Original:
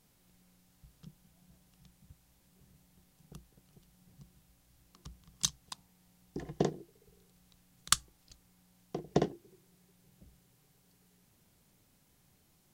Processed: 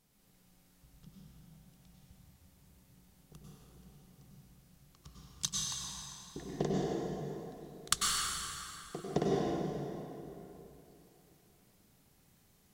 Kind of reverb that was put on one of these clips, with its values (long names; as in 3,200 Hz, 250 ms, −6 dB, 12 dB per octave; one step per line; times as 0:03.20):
dense smooth reverb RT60 3.1 s, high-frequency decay 0.7×, pre-delay 85 ms, DRR −5 dB
level −4.5 dB